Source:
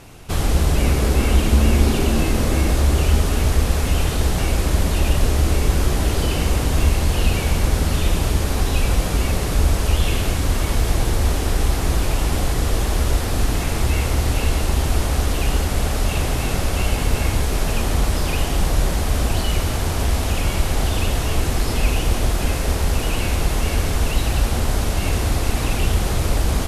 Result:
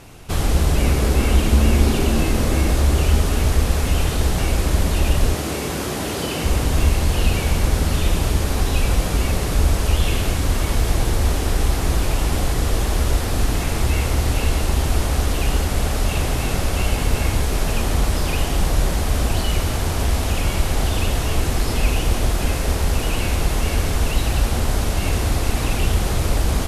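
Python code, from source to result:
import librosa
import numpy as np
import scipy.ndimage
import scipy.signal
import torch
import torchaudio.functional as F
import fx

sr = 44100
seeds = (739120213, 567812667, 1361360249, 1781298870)

y = fx.highpass(x, sr, hz=150.0, slope=12, at=(5.34, 6.44))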